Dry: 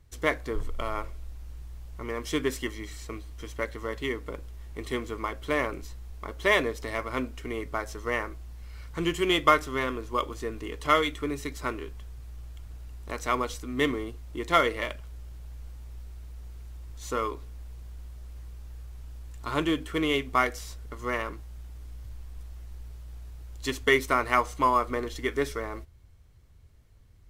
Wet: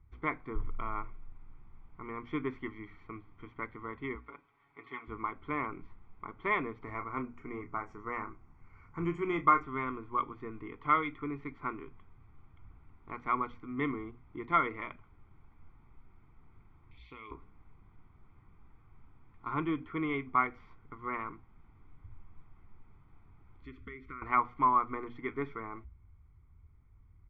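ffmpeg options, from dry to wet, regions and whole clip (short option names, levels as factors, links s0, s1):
-filter_complex "[0:a]asettb=1/sr,asplit=3[s0][s1][s2];[s0]atrim=end=4.154[s3];[s1]atrim=start=4.15:end=5.08,asetpts=PTS-STARTPTS,afade=t=in:d=0.004:c=qsin,afade=t=out:st=0.926:d=0.004:c=qsin,highpass=f=1100:p=1,aecho=1:1:7.1:0.83,atrim=end_sample=41013[s4];[s2]atrim=start=5.076[s5];[s3][s4]acrossfade=d=0.004:c1=hsin:c2=qsin[s6];[s6][s5]acrossfade=d=0.004:c1=qsin:c2=hsin,asettb=1/sr,asplit=3[s7][s8][s9];[s7]atrim=end=6.844[s10];[s8]atrim=start=6.84:end=9.63,asetpts=PTS-STARTPTS,afade=t=in:d=0.004:c=qsin,afade=t=out:st=2.786:d=0.004:c=qsin,highshelf=f=5100:t=q:w=3:g=12,asplit=2[s11][s12];[s12]adelay=29,volume=0.335[s13];[s11][s13]amix=inputs=2:normalize=0,atrim=end_sample=123039[s14];[s9]atrim=start=9.626[s15];[s10][s14]acrossfade=d=0.004:c1=hsin:c2=qsin[s16];[s16][s15]acrossfade=d=0.004:c1=qsin:c2=hsin,asettb=1/sr,asplit=3[s17][s18][s19];[s17]atrim=end=16.914[s20];[s18]atrim=start=16.91:end=17.31,asetpts=PTS-STARTPTS,afade=t=in:d=0.004:c=qsin,afade=t=out:st=0.396:d=0.004:c=qsin,lowpass=f=4100:t=q:w=2.2,highshelf=f=1900:t=q:w=3:g=9,acompressor=threshold=0.0141:ratio=6:attack=3.2:release=140:knee=1:detection=peak[s21];[s19]atrim=start=17.306[s22];[s20][s21]acrossfade=d=0.004:c1=hsin:c2=qsin[s23];[s23][s22]acrossfade=d=0.004:c1=qsin:c2=hsin,asettb=1/sr,asplit=3[s24][s25][s26];[s24]atrim=end=23.634[s27];[s25]atrim=start=23.63:end=24.22,asetpts=PTS-STARTPTS,afade=t=in:d=0.004:c=qsin,afade=t=out:st=0.586:d=0.004:c=qsin,asuperstop=centerf=770:order=4:qfactor=0.99,acompressor=threshold=0.0126:ratio=4:attack=3.2:release=140:knee=1:detection=peak[s28];[s26]atrim=start=24.216[s29];[s27][s28]acrossfade=d=0.004:c1=hsin:c2=qsin[s30];[s30][s29]acrossfade=d=0.004:c1=qsin:c2=hsin,lowpass=f=2100:w=0.5412,lowpass=f=2100:w=1.3066,bandreject=f=60:t=h:w=6,bandreject=f=120:t=h:w=6,bandreject=f=180:t=h:w=6,bandreject=f=240:t=h:w=6,aecho=1:1:0.9:0.78,volume=0.447"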